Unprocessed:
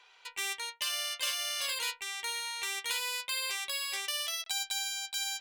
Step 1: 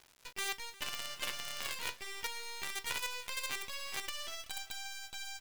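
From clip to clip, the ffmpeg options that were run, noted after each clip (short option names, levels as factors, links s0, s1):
-filter_complex "[0:a]acrossover=split=2900[s0][s1];[s1]acompressor=threshold=0.00501:ratio=4:attack=1:release=60[s2];[s0][s2]amix=inputs=2:normalize=0,acrossover=split=200[s3][s4];[s4]acrusher=bits=6:dc=4:mix=0:aa=0.000001[s5];[s3][s5]amix=inputs=2:normalize=0,aecho=1:1:355|710|1065:0.106|0.0466|0.0205,volume=1.12"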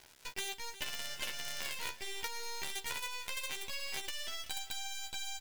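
-filter_complex "[0:a]asplit=2[s0][s1];[s1]adelay=13,volume=0.501[s2];[s0][s2]amix=inputs=2:normalize=0,acompressor=threshold=0.0126:ratio=6,bandreject=f=1200:w=7.9,volume=1.5"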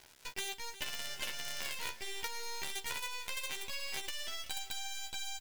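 -af "aecho=1:1:687:0.0841"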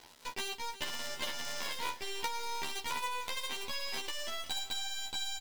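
-filter_complex "[0:a]equalizer=f=250:t=o:w=1:g=9,equalizer=f=500:t=o:w=1:g=6,equalizer=f=1000:t=o:w=1:g=8,equalizer=f=4000:t=o:w=1:g=6,asplit=2[s0][s1];[s1]acrusher=bits=4:dc=4:mix=0:aa=0.000001,volume=0.316[s2];[s0][s2]amix=inputs=2:normalize=0,asplit=2[s3][s4];[s4]adelay=12,volume=0.708[s5];[s3][s5]amix=inputs=2:normalize=0,volume=0.531"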